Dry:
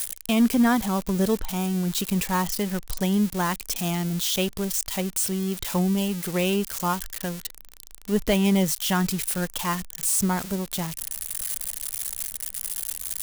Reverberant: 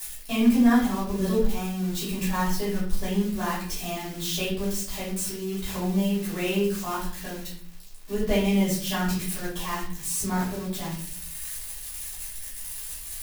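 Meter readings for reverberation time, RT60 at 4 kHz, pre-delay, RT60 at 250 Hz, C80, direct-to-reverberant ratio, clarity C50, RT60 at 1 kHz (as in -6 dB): 0.55 s, 0.45 s, 3 ms, 0.80 s, 8.5 dB, -10.0 dB, 4.0 dB, 0.50 s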